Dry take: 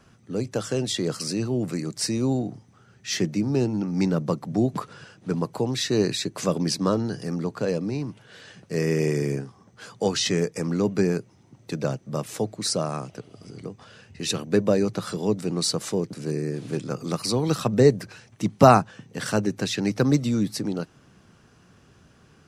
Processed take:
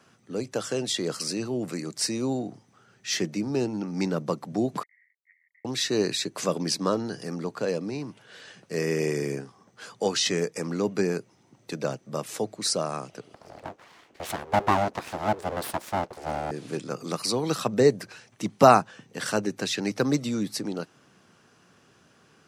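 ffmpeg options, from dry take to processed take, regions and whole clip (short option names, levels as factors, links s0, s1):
-filter_complex "[0:a]asettb=1/sr,asplit=3[s0][s1][s2];[s0]atrim=end=4.834[s3];[s1]atrim=start=4.83:end=5.65,asetpts=PTS-STARTPTS,afade=t=in:d=0.004:c=qsin,afade=t=out:st=0.816:d=0.004:c=qsin,aeval=exprs='val(0)*gte(abs(val(0)),0.0075)':c=same,asuperpass=centerf=2000:order=8:qfactor=5.7[s4];[s2]atrim=start=5.646[s5];[s3][s4]acrossfade=d=0.004:c1=hsin:c2=qsin[s6];[s6][s5]acrossfade=d=0.004:c1=qsin:c2=hsin,asettb=1/sr,asplit=3[s7][s8][s9];[s7]atrim=end=13.344[s10];[s8]atrim=start=13.34:end=16.51,asetpts=PTS-STARTPTS,afade=t=in:d=0.004:c=qsin,afade=t=out:st=3.166:d=0.004:c=qsin,highpass=240,tiltshelf=f=1400:g=7.5,aeval=exprs='abs(val(0))':c=same[s11];[s9]atrim=start=16.506[s12];[s10][s11]acrossfade=d=0.004:c1=hsin:c2=qsin[s13];[s13][s12]acrossfade=d=0.004:c1=qsin:c2=hsin,highpass=87,lowshelf=f=180:g=-12"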